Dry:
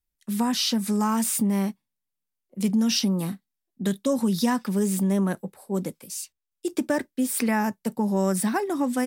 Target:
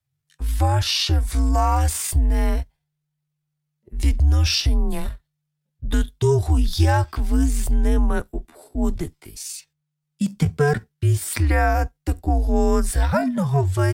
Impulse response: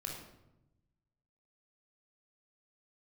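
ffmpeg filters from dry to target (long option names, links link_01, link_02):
-af "atempo=0.65,afreqshift=-150,highshelf=frequency=7300:gain=-9,volume=5.5dB"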